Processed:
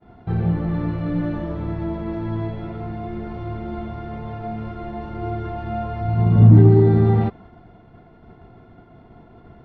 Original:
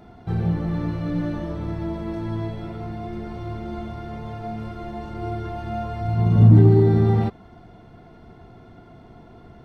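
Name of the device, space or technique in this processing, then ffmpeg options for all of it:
hearing-loss simulation: -af "lowpass=3k,agate=range=-33dB:threshold=-42dB:ratio=3:detection=peak,volume=2dB"

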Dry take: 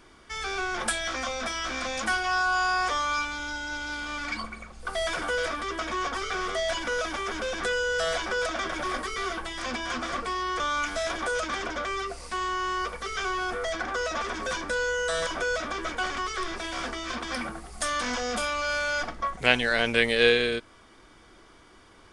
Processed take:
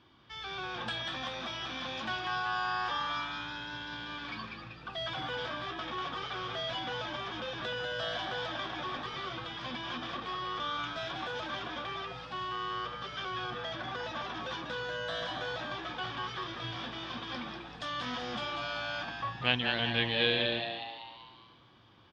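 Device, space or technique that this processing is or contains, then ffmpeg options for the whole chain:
frequency-shifting delay pedal into a guitar cabinet: -filter_complex "[0:a]asplit=7[a][b][c][d][e][f][g];[b]adelay=192,afreqshift=110,volume=-6dB[h];[c]adelay=384,afreqshift=220,volume=-11.8dB[i];[d]adelay=576,afreqshift=330,volume=-17.7dB[j];[e]adelay=768,afreqshift=440,volume=-23.5dB[k];[f]adelay=960,afreqshift=550,volume=-29.4dB[l];[g]adelay=1152,afreqshift=660,volume=-35.2dB[m];[a][h][i][j][k][l][m]amix=inputs=7:normalize=0,highpass=86,equalizer=f=110:t=q:w=4:g=9,equalizer=f=430:t=q:w=4:g=-9,equalizer=f=640:t=q:w=4:g=-5,equalizer=f=1.4k:t=q:w=4:g=-6,equalizer=f=2.1k:t=q:w=4:g=-8,equalizer=f=3.3k:t=q:w=4:g=5,lowpass=f=4.1k:w=0.5412,lowpass=f=4.1k:w=1.3066,volume=-5.5dB"

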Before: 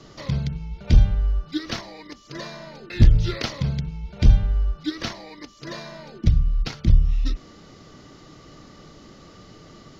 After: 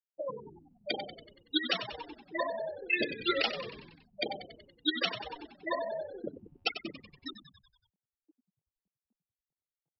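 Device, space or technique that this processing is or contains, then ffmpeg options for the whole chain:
laptop speaker: -filter_complex "[0:a]afftfilt=real='re*gte(hypot(re,im),0.0562)':imag='im*gte(hypot(re,im),0.0562)':win_size=1024:overlap=0.75,highpass=f=420:w=0.5412,highpass=f=420:w=1.3066,equalizer=f=840:t=o:w=0.47:g=9.5,equalizer=f=2.8k:t=o:w=0.53:g=11.5,alimiter=limit=-21.5dB:level=0:latency=1:release=283,asplit=7[a][b][c][d][e][f][g];[b]adelay=94,afreqshift=-62,volume=-11dB[h];[c]adelay=188,afreqshift=-124,volume=-15.9dB[i];[d]adelay=282,afreqshift=-186,volume=-20.8dB[j];[e]adelay=376,afreqshift=-248,volume=-25.6dB[k];[f]adelay=470,afreqshift=-310,volume=-30.5dB[l];[g]adelay=564,afreqshift=-372,volume=-35.4dB[m];[a][h][i][j][k][l][m]amix=inputs=7:normalize=0,volume=5dB"

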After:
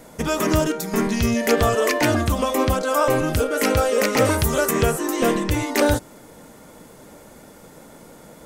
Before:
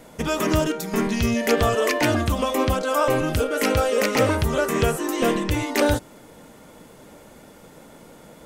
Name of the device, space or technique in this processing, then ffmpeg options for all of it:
exciter from parts: -filter_complex "[0:a]asettb=1/sr,asplit=3[a][b][c];[a]atrim=end=4.254[d];[b]atrim=start=4.25:end=4.71,asetpts=PTS-STARTPTS,afade=t=in:d=0.004:c=qsin,afade=t=out:st=0.456:d=0.004:c=qsin,aemphasis=mode=production:type=cd[e];[c]atrim=start=4.706[f];[d][e]acrossfade=d=0.004:c1=hsin:c2=qsin[g];[g][f]acrossfade=d=0.004:c1=qsin:c2=hsin,asplit=2[h][i];[i]highpass=f=2.7k:w=0.5412,highpass=f=2.7k:w=1.3066,asoftclip=type=tanh:threshold=-27.5dB,volume=-8dB[j];[h][j]amix=inputs=2:normalize=0,volume=1.5dB"

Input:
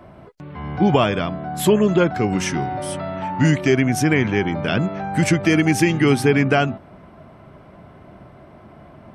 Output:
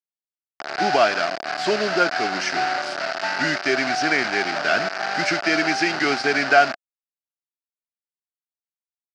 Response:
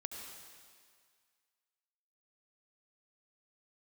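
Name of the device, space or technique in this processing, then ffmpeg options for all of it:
hand-held game console: -af "acrusher=bits=3:mix=0:aa=0.000001,highpass=470,equalizer=f=490:t=q:w=4:g=-7,equalizer=f=690:t=q:w=4:g=8,equalizer=f=1k:t=q:w=4:g=-7,equalizer=f=1.5k:t=q:w=4:g=8,equalizer=f=3.4k:t=q:w=4:g=-7,equalizer=f=4.8k:t=q:w=4:g=8,lowpass=f=5.2k:w=0.5412,lowpass=f=5.2k:w=1.3066"

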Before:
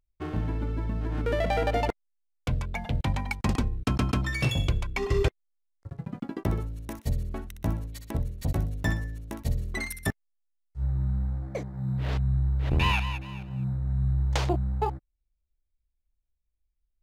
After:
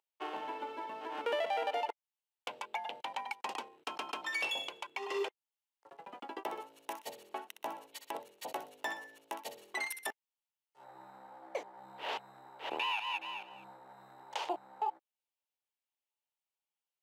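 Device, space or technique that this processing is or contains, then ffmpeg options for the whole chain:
laptop speaker: -af "highpass=f=410:w=0.5412,highpass=f=410:w=1.3066,equalizer=f=880:t=o:w=0.41:g=11.5,equalizer=f=2.9k:t=o:w=0.47:g=9,alimiter=limit=-22dB:level=0:latency=1:release=276,volume=-3.5dB"

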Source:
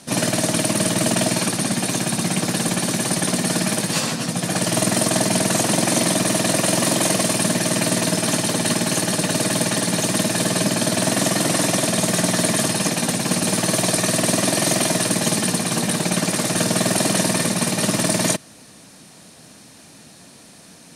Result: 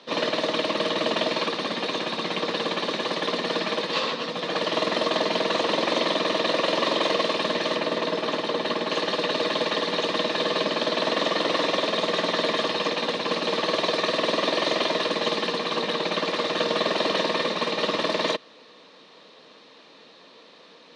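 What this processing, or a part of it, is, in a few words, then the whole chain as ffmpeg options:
phone earpiece: -filter_complex "[0:a]highpass=440,equalizer=f=470:t=q:w=4:g=8,equalizer=f=730:t=q:w=4:g=-7,equalizer=f=1.1k:t=q:w=4:g=5,equalizer=f=1.5k:t=q:w=4:g=-6,equalizer=f=2.3k:t=q:w=4:g=-3,equalizer=f=3.8k:t=q:w=4:g=5,lowpass=f=3.8k:w=0.5412,lowpass=f=3.8k:w=1.3066,asettb=1/sr,asplit=3[a][b][c];[a]atrim=end=7.764[d];[b]atrim=start=7.76:end=8.91,asetpts=PTS-STARTPTS,afade=t=in:d=0.004:c=qsin,afade=t=out:st=1.146:d=0.004:c=qsin,equalizer=f=5.6k:w=0.33:g=-4.5[e];[c]atrim=start=8.906[f];[d][e]acrossfade=d=0.004:c1=hsin:c2=qsin[g];[g][f]acrossfade=d=0.004:c1=qsin:c2=hsin"

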